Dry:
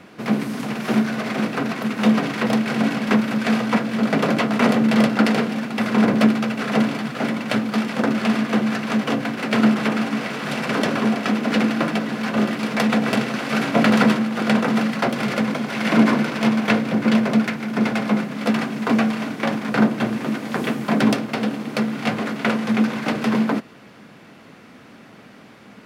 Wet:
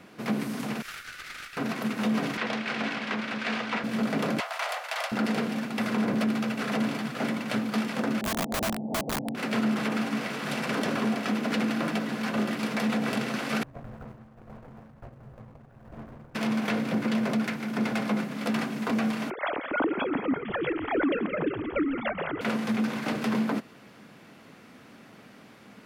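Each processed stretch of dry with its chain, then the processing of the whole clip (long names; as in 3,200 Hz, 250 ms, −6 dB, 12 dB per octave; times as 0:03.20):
0:00.82–0:01.57: Butterworth high-pass 1,200 Hz 96 dB per octave + tube saturation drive 27 dB, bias 0.7
0:02.37–0:03.84: low-pass filter 3,100 Hz + spectral tilt +3.5 dB per octave + highs frequency-modulated by the lows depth 0.14 ms
0:04.40–0:05.12: Butterworth high-pass 620 Hz 48 dB per octave + saturating transformer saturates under 2,300 Hz
0:08.21–0:09.35: Chebyshev low-pass with heavy ripple 870 Hz, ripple 3 dB + wrap-around overflow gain 17.5 dB
0:13.63–0:16.35: running median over 41 samples + drawn EQ curve 110 Hz 0 dB, 200 Hz −26 dB, 660 Hz −16 dB, 1,100 Hz −13 dB, 4,000 Hz −27 dB
0:19.30–0:22.41: three sine waves on the formant tracks + echo with shifted repeats 172 ms, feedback 59%, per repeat −56 Hz, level −12.5 dB
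whole clip: high-shelf EQ 8,000 Hz +6 dB; brickwall limiter −12.5 dBFS; level −6 dB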